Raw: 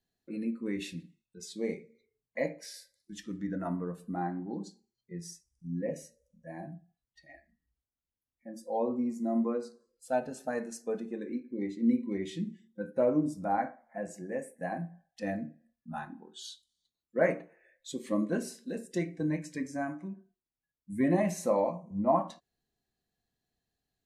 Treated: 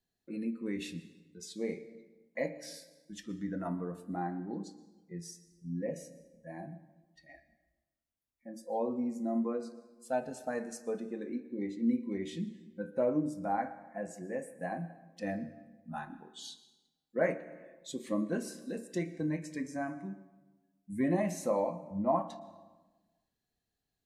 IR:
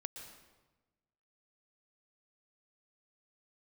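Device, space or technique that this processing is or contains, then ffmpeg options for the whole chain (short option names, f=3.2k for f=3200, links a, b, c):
compressed reverb return: -filter_complex "[0:a]asplit=2[a][b];[1:a]atrim=start_sample=2205[c];[b][c]afir=irnorm=-1:irlink=0,acompressor=threshold=-34dB:ratio=6,volume=-4dB[d];[a][d]amix=inputs=2:normalize=0,volume=-4.5dB"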